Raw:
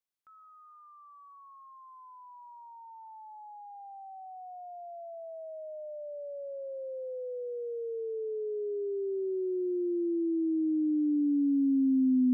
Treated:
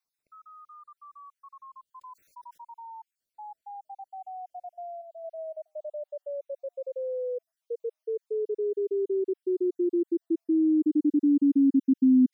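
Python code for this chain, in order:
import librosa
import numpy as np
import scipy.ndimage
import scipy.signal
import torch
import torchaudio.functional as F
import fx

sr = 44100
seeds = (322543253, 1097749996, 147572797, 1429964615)

y = fx.spec_dropout(x, sr, seeds[0], share_pct=45)
y = fx.env_flatten(y, sr, amount_pct=50, at=(2.01, 2.58))
y = F.gain(torch.from_numpy(y), 6.5).numpy()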